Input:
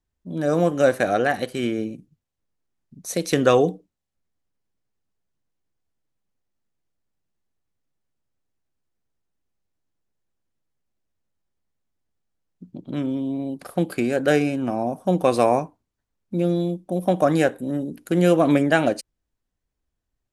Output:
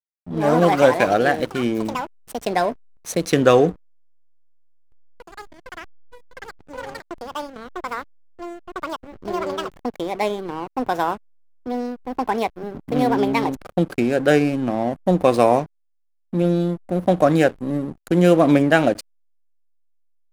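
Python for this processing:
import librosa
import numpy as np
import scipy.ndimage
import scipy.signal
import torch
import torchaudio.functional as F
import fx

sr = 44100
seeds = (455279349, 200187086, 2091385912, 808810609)

y = fx.echo_pitch(x, sr, ms=110, semitones=6, count=3, db_per_echo=-6.0)
y = fx.backlash(y, sr, play_db=-29.5)
y = y * librosa.db_to_amplitude(3.0)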